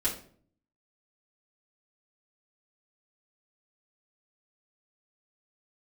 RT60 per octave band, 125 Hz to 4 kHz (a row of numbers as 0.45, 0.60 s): 0.85, 0.75, 0.60, 0.45, 0.40, 0.35 s